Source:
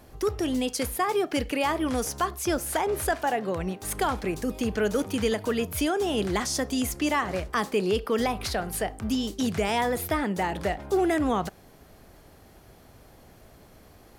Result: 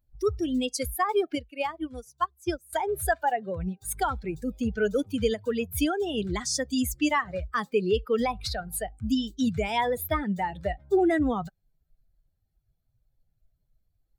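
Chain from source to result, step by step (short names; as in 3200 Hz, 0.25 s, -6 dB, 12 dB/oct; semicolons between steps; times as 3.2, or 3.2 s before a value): per-bin expansion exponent 2; 1.35–2.73 upward expander 2.5:1, over -38 dBFS; gain +4 dB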